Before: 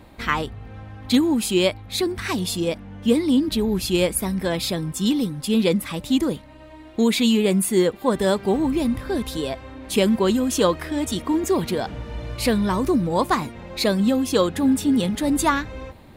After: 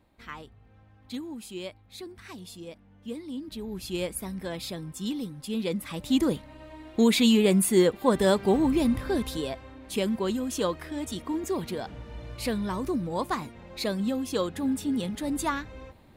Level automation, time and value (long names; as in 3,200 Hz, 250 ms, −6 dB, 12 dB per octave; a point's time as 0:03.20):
0:03.31 −18.5 dB
0:03.97 −11 dB
0:05.64 −11 dB
0:06.27 −2 dB
0:09.07 −2 dB
0:09.86 −9 dB